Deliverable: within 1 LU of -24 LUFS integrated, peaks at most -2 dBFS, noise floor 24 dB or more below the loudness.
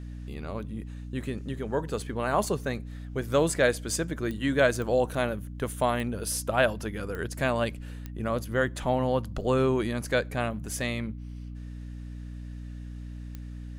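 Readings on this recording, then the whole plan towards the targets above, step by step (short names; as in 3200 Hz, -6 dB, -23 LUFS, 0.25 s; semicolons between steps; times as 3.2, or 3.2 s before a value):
clicks 6; hum 60 Hz; harmonics up to 300 Hz; hum level -36 dBFS; loudness -29.0 LUFS; peak -10.0 dBFS; loudness target -24.0 LUFS
-> de-click; de-hum 60 Hz, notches 5; gain +5 dB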